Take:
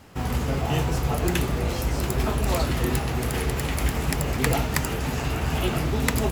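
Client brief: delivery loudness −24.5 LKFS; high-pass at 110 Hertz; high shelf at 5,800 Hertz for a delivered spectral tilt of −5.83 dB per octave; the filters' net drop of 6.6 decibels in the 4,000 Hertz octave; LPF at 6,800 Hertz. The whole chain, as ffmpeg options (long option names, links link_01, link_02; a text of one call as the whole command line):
ffmpeg -i in.wav -af "highpass=110,lowpass=6800,equalizer=frequency=4000:width_type=o:gain=-7,highshelf=frequency=5800:gain=-5,volume=3.5dB" out.wav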